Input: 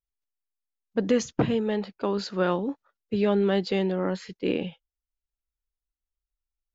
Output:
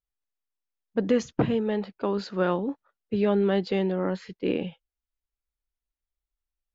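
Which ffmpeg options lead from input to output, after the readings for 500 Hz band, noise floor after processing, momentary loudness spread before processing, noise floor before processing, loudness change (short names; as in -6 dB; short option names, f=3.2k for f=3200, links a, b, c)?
0.0 dB, under -85 dBFS, 9 LU, under -85 dBFS, 0.0 dB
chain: -af "highshelf=f=5k:g=-10.5"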